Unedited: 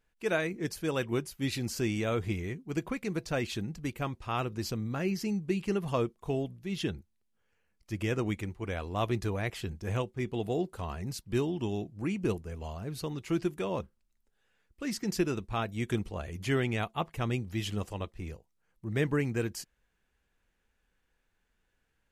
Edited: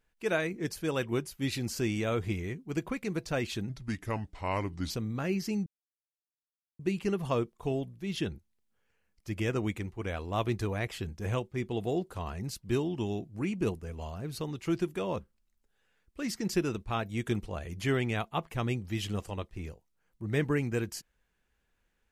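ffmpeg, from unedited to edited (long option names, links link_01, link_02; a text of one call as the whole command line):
ffmpeg -i in.wav -filter_complex "[0:a]asplit=4[link_01][link_02][link_03][link_04];[link_01]atrim=end=3.694[link_05];[link_02]atrim=start=3.69:end=4.66,asetpts=PTS-STARTPTS,asetrate=35280,aresample=44100,atrim=end_sample=53471,asetpts=PTS-STARTPTS[link_06];[link_03]atrim=start=4.656:end=5.42,asetpts=PTS-STARTPTS,afade=type=out:start_time=0.76:duration=0.004:curve=hsin,apad=pad_dur=1.13[link_07];[link_04]atrim=start=5.42,asetpts=PTS-STARTPTS,afade=type=in:duration=0.004:curve=hsin[link_08];[link_05][link_06]acrossfade=duration=0.004:curve1=hsin:curve2=hsin[link_09];[link_07][link_08]concat=n=2:v=0:a=1[link_10];[link_09][link_10]acrossfade=duration=0.004:curve1=hsin:curve2=hsin" out.wav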